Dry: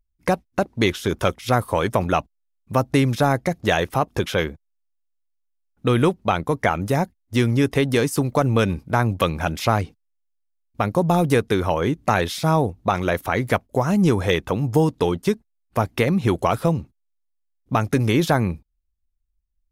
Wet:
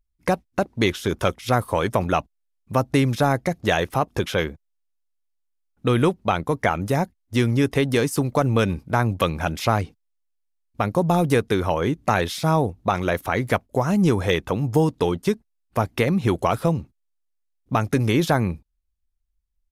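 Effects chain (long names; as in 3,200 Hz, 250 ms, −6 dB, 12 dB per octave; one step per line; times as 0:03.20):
downsampling to 32,000 Hz
level −1 dB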